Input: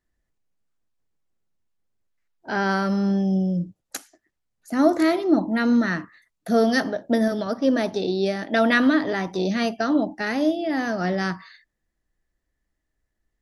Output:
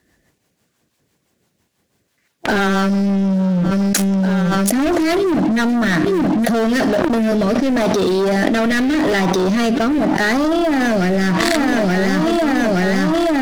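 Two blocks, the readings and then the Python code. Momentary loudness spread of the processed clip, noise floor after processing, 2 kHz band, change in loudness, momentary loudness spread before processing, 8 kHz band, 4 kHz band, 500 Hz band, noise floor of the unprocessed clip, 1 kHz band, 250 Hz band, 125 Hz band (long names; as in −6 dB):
1 LU, −67 dBFS, +7.0 dB, +6.0 dB, 10 LU, +15.5 dB, +9.0 dB, +7.0 dB, −79 dBFS, +7.5 dB, +7.5 dB, +10.5 dB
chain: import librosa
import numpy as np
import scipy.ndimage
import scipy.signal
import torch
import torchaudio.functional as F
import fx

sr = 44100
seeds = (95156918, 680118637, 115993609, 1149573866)

y = scipy.signal.sosfilt(scipy.signal.butter(2, 110.0, 'highpass', fs=sr, output='sos'), x)
y = fx.notch(y, sr, hz=1300.0, q=15.0)
y = fx.leveller(y, sr, passes=5)
y = fx.rotary_switch(y, sr, hz=6.0, then_hz=0.85, switch_at_s=6.08)
y = 10.0 ** (-8.0 / 20.0) * np.tanh(y / 10.0 ** (-8.0 / 20.0))
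y = fx.echo_feedback(y, sr, ms=874, feedback_pct=49, wet_db=-22.5)
y = fx.env_flatten(y, sr, amount_pct=100)
y = y * librosa.db_to_amplitude(-5.0)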